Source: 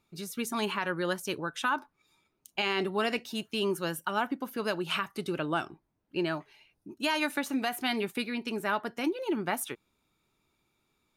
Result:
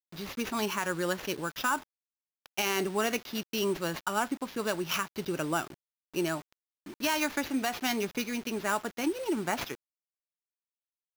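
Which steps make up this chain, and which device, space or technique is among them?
early 8-bit sampler (sample-rate reducer 8.6 kHz, jitter 0%; bit crusher 8-bit)

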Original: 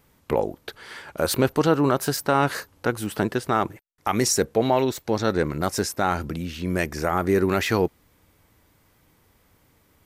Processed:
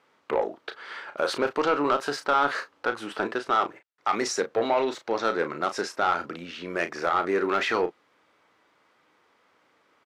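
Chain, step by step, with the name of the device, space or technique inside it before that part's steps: intercom (band-pass 400–4000 Hz; peaking EQ 1.3 kHz +5 dB 0.43 oct; saturation -14.5 dBFS, distortion -13 dB; doubling 35 ms -9.5 dB)

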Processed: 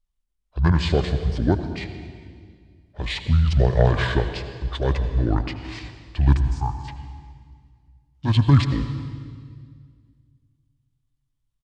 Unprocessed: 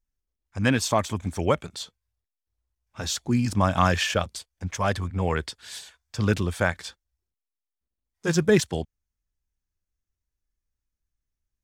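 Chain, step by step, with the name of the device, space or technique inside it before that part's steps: 6.37–6.87 s: FFT filter 170 Hz 0 dB, 820 Hz -26 dB, 1.3 kHz 0 dB, 4.2 kHz -24 dB, 12 kHz +2 dB; monster voice (pitch shift -7 st; formant shift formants -3 st; bass shelf 190 Hz +7 dB; reverberation RT60 1.9 s, pre-delay 72 ms, DRR 9 dB)

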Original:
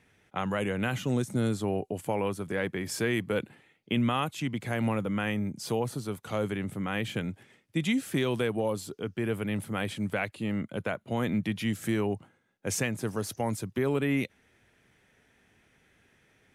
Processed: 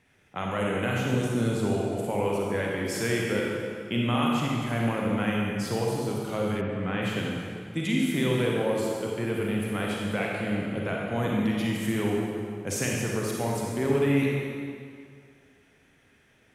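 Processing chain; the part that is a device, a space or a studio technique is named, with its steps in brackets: stairwell (reverberation RT60 2.2 s, pre-delay 35 ms, DRR -3 dB); 6.60–7.01 s: low-pass 2.3 kHz -> 4.2 kHz 12 dB/octave; trim -1.5 dB

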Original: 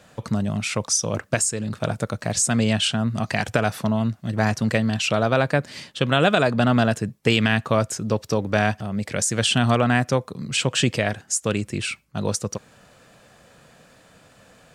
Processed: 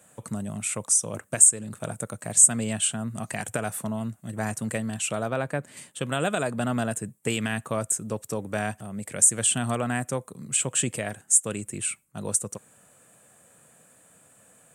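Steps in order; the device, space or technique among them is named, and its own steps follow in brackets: budget condenser microphone (high-pass 96 Hz; resonant high shelf 6.5 kHz +10.5 dB, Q 3); 5.28–5.77 s: peaking EQ 9.7 kHz -8 dB 1.7 oct; trim -8 dB

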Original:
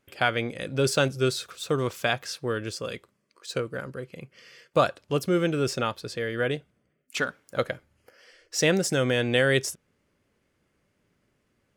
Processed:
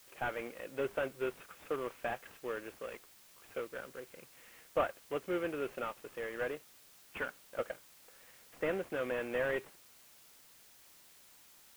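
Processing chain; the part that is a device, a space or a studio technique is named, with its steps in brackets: army field radio (band-pass 350–3200 Hz; CVSD coder 16 kbps; white noise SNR 20 dB); trim -8 dB

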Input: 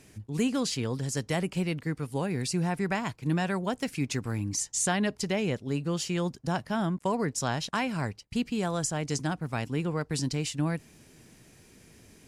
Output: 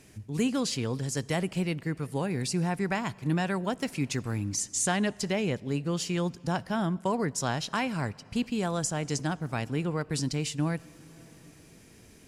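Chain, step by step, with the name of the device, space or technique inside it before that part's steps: compressed reverb return (on a send at -9.5 dB: reverberation RT60 2.2 s, pre-delay 52 ms + compression 6:1, threshold -40 dBFS, peak gain reduction 16 dB)

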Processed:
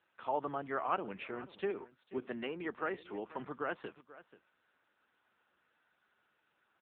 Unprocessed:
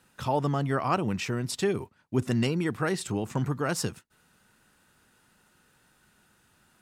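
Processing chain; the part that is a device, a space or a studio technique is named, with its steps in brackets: 1.70–3.40 s: high-pass 150 Hz 12 dB/octave; satellite phone (band-pass 390–3100 Hz; delay 485 ms -17.5 dB; trim -5.5 dB; AMR-NB 6.7 kbps 8 kHz)

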